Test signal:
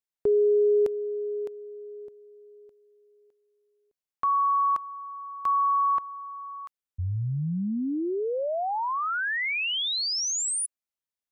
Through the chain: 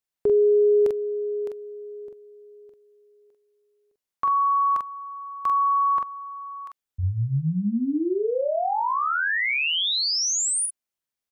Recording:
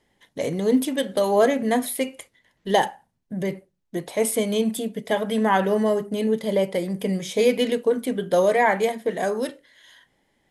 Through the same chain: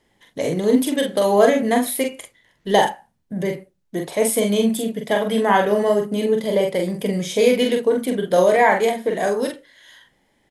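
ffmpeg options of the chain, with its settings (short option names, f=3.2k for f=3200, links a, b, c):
-af "aecho=1:1:30|44:0.133|0.631,volume=2.5dB"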